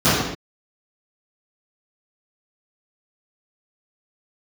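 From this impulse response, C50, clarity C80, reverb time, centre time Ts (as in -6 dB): -2.0 dB, 1.5 dB, not exponential, 81 ms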